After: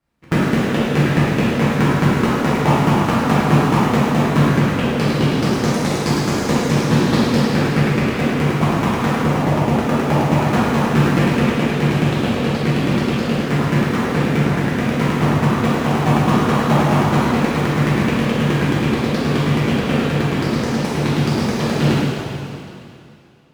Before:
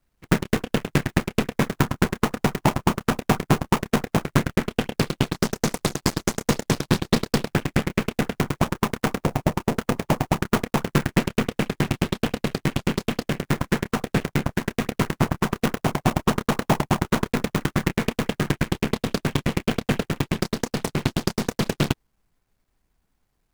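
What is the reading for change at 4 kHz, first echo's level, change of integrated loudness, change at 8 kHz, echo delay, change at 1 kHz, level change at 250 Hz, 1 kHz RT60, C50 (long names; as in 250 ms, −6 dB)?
+5.0 dB, no echo audible, +7.5 dB, +1.0 dB, no echo audible, +7.5 dB, +8.0 dB, 2.6 s, −4.0 dB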